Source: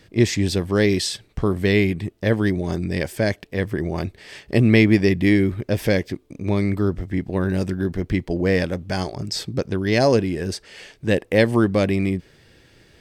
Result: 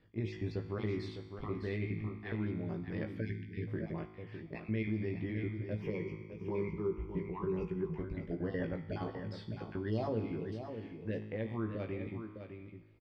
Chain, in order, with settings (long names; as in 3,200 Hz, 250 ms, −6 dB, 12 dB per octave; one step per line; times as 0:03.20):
time-frequency cells dropped at random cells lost 27%
high-frequency loss of the air 370 metres
tuned comb filter 53 Hz, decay 1.2 s, harmonics all, mix 70%
brickwall limiter −22 dBFS, peak gain reduction 8.5 dB
speech leveller 2 s
double-tracking delay 18 ms −4.5 dB
single-tap delay 607 ms −8.5 dB
0:03.21–0:03.67: gain on a spectral selection 460–1,500 Hz −25 dB
0:05.82–0:07.98: EQ curve with evenly spaced ripples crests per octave 0.76, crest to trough 15 dB
level −7.5 dB